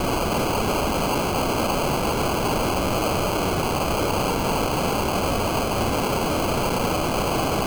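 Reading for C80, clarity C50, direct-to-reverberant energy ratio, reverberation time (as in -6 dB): 18.0 dB, 14.0 dB, 11.0 dB, 0.40 s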